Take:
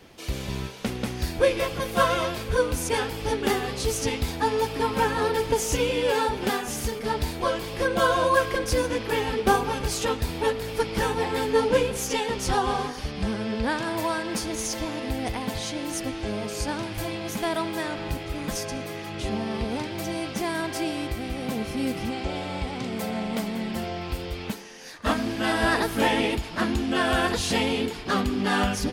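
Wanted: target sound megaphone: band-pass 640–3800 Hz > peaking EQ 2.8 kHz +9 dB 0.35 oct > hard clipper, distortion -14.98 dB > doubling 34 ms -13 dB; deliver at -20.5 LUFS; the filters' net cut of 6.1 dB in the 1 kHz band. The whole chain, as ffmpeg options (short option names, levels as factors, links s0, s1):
-filter_complex "[0:a]highpass=640,lowpass=3800,equalizer=f=1000:t=o:g=-6.5,equalizer=f=2800:t=o:w=0.35:g=9,asoftclip=type=hard:threshold=0.0708,asplit=2[s0][s1];[s1]adelay=34,volume=0.224[s2];[s0][s2]amix=inputs=2:normalize=0,volume=3.55"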